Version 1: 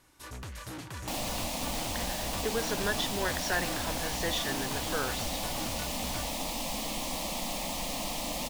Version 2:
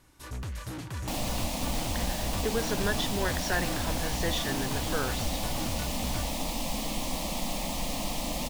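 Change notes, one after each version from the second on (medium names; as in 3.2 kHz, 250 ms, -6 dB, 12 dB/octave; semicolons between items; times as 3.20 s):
master: add bass shelf 250 Hz +7.5 dB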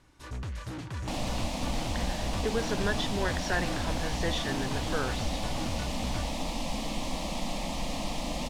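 master: add distance through air 57 m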